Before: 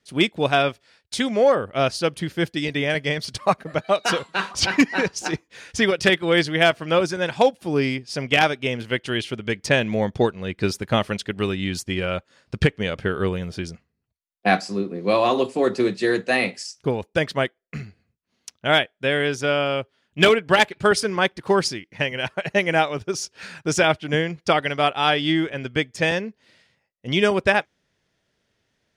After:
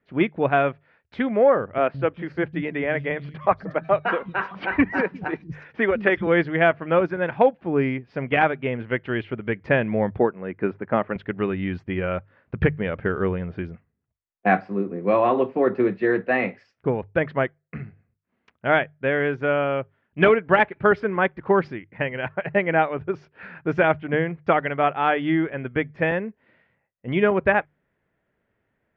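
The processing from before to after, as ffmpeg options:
-filter_complex "[0:a]asettb=1/sr,asplit=3[s0][s1][s2];[s0]atrim=end=1.784[s3];[s1]atrim=start=1.78:end=6.27,asetpts=PTS-STARTPTS,afade=t=in:d=0.004:c=qsin,afade=t=out:st=4.486:d=0.004:c=qsin,acrossover=split=200|4600[s4][s5][s6];[s4]adelay=160[s7];[s6]adelay=360[s8];[s7][s5][s8]amix=inputs=3:normalize=0,atrim=end_sample=198009[s9];[s2]atrim=start=6.266[s10];[s3][s9]acrossfade=d=0.004:c1=hsin:c2=qsin[s11];[s11][s10]acrossfade=d=0.004:c1=qsin:c2=hsin,asettb=1/sr,asplit=3[s12][s13][s14];[s12]atrim=end=10.194[s15];[s13]atrim=start=10.19:end=11.16,asetpts=PTS-STARTPTS,afade=t=in:d=0.004:c=qsin,afade=t=out:st=0.966:d=0.004:c=qsin,highpass=190,lowpass=2100[s16];[s14]atrim=start=11.156[s17];[s15][s16]acrossfade=d=0.004:c1=hsin:c2=qsin[s18];[s18][s17]acrossfade=d=0.004:c1=qsin:c2=hsin,lowpass=f=2100:w=0.5412,lowpass=f=2100:w=1.3066,bandreject=f=50:t=h:w=6,bandreject=f=100:t=h:w=6,bandreject=f=150:t=h:w=6"

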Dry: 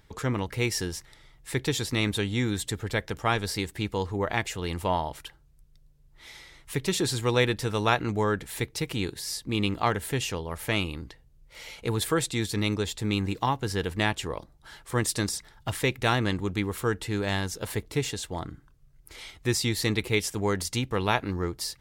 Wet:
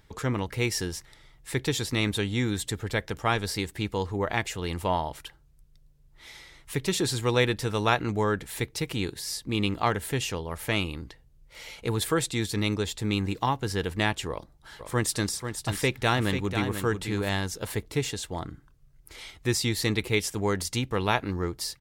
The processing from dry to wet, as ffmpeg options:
-filter_complex "[0:a]asplit=3[s0][s1][s2];[s0]afade=t=out:st=14.79:d=0.02[s3];[s1]aecho=1:1:491:0.398,afade=t=in:st=14.79:d=0.02,afade=t=out:st=17.28:d=0.02[s4];[s2]afade=t=in:st=17.28:d=0.02[s5];[s3][s4][s5]amix=inputs=3:normalize=0"

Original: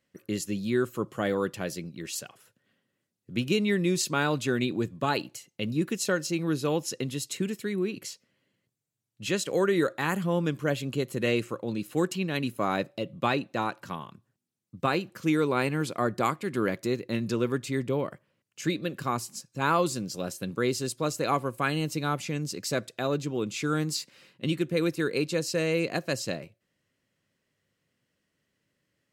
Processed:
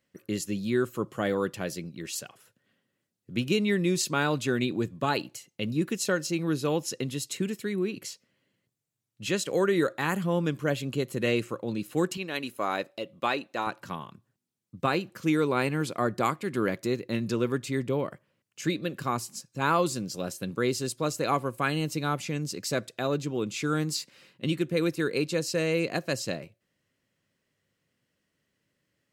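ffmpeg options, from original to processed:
-filter_complex "[0:a]asettb=1/sr,asplit=3[s0][s1][s2];[s0]atrim=end=12.174[s3];[s1]atrim=start=12.17:end=13.67,asetpts=PTS-STARTPTS,afade=t=in:d=0.004:c=qsin,afade=t=out:st=1.496:d=0.004:c=qsin,equalizer=f=130:t=o:w=1.8:g=-14[s4];[s2]atrim=start=13.666[s5];[s3][s4]acrossfade=d=0.004:c1=hsin:c2=qsin[s6];[s6][s5]acrossfade=d=0.004:c1=qsin:c2=hsin"

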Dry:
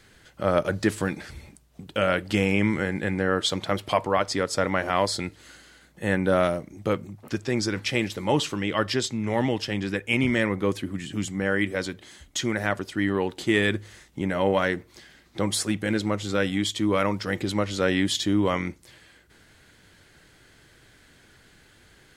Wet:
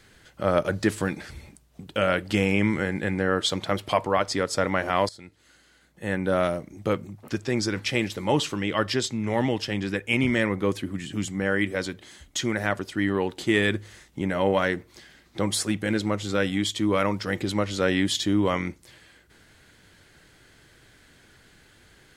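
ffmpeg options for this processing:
-filter_complex "[0:a]asplit=2[s0][s1];[s0]atrim=end=5.09,asetpts=PTS-STARTPTS,afade=t=out:st=5.086:d=0.004:c=hsin:silence=0.112202[s2];[s1]atrim=start=5.09,asetpts=PTS-STARTPTS,afade=t=in:d=1.65:silence=0.112202[s3];[s2][s3]concat=n=2:v=0:a=1"

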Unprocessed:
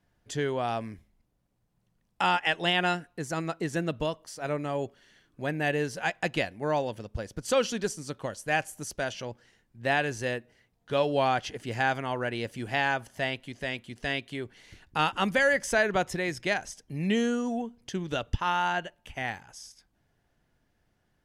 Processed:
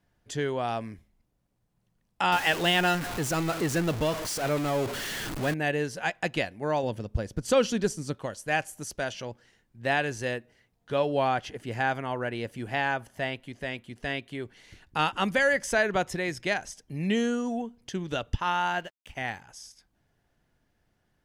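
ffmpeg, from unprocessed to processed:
-filter_complex "[0:a]asettb=1/sr,asplit=3[s0][s1][s2];[s0]atrim=end=2.324[s3];[s1]atrim=start=2.32:end=5.54,asetpts=PTS-STARTPTS,afade=t=in:d=0.004:c=qsin,afade=t=out:st=3.216:d=0.004:c=qsin,aeval=exprs='val(0)+0.5*0.0376*sgn(val(0))':c=same[s4];[s2]atrim=start=5.536[s5];[s3][s4]acrossfade=d=0.004:c1=hsin:c2=qsin[s6];[s6][s5]acrossfade=d=0.004:c1=qsin:c2=hsin,asettb=1/sr,asplit=3[s7][s8][s9];[s7]atrim=end=6.834[s10];[s8]atrim=start=6.83:end=8.15,asetpts=PTS-STARTPTS,afade=t=in:d=0.004:c=qsin,afade=t=out:st=1.316:d=0.004:c=qsin,lowshelf=f=400:g=7[s11];[s9]atrim=start=8.146[s12];[s10][s11]acrossfade=d=0.004:c1=hsin:c2=qsin[s13];[s13][s12]acrossfade=d=0.004:c1=qsin:c2=hsin,asettb=1/sr,asplit=3[s14][s15][s16];[s14]atrim=end=10.924[s17];[s15]atrim=start=10.92:end=14.4,asetpts=PTS-STARTPTS,afade=t=in:d=0.004:c=qsin,afade=t=out:st=3.476:d=0.004:c=qsin,equalizer=f=5500:t=o:w=2:g=-5[s18];[s16]atrim=start=14.396[s19];[s17][s18]acrossfade=d=0.004:c1=hsin:c2=qsin[s20];[s20][s19]acrossfade=d=0.004:c1=qsin:c2=hsin,asettb=1/sr,asplit=3[s21][s22][s23];[s21]atrim=end=18.664[s24];[s22]atrim=start=18.66:end=19.15,asetpts=PTS-STARTPTS,afade=t=in:d=0.004:c=qsin,afade=t=out:st=0.486:d=0.004:c=qsin,aeval=exprs='sgn(val(0))*max(abs(val(0))-0.00178,0)':c=same[s25];[s23]atrim=start=19.146[s26];[s24][s25]acrossfade=d=0.004:c1=hsin:c2=qsin[s27];[s27][s26]acrossfade=d=0.004:c1=qsin:c2=hsin"

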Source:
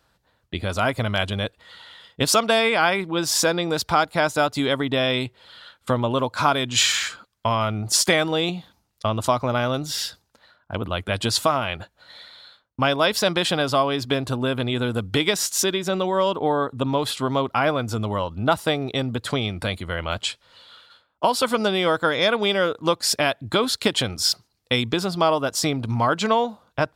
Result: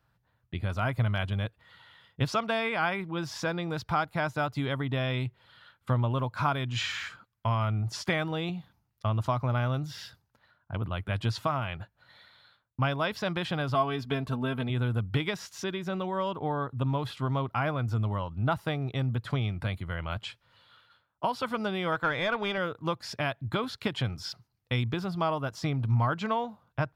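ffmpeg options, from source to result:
-filter_complex "[0:a]asettb=1/sr,asplit=3[s0][s1][s2];[s0]atrim=end=13.744[s3];[s1]atrim=start=13.74:end=14.7,asetpts=PTS-STARTPTS,afade=t=in:d=0.004:c=qsin,afade=t=out:st=0.956:d=0.004:c=qsin,aecho=1:1:4.5:0.67,atrim=end_sample=42336[s4];[s2]atrim=start=14.696[s5];[s3][s4]acrossfade=d=0.004:c1=hsin:c2=qsin[s6];[s6][s5]acrossfade=d=0.004:c1=qsin:c2=hsin,asettb=1/sr,asplit=3[s7][s8][s9];[s7]atrim=end=21.924[s10];[s8]atrim=start=21.92:end=22.58,asetpts=PTS-STARTPTS,afade=t=in:d=0.004:c=qsin,afade=t=out:st=0.656:d=0.004:c=qsin,asplit=2[s11][s12];[s12]highpass=f=720:p=1,volume=3.55,asoftclip=type=tanh:threshold=0.355[s13];[s11][s13]amix=inputs=2:normalize=0,lowpass=f=3300:p=1,volume=0.501[s14];[s9]atrim=start=22.576[s15];[s10][s14]acrossfade=d=0.004:c1=hsin:c2=qsin[s16];[s16][s15]acrossfade=d=0.004:c1=qsin:c2=hsin,acrossover=split=6400[s17][s18];[s18]acompressor=threshold=0.00631:ratio=4:attack=1:release=60[s19];[s17][s19]amix=inputs=2:normalize=0,equalizer=f=125:t=o:w=1:g=9,equalizer=f=250:t=o:w=1:g=-3,equalizer=f=500:t=o:w=1:g=-5,equalizer=f=4000:t=o:w=1:g=-6,equalizer=f=8000:t=o:w=1:g=-10,volume=0.447"

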